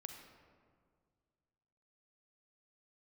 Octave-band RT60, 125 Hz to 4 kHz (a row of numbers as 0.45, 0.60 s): 2.6, 2.3, 2.1, 1.8, 1.4, 0.95 s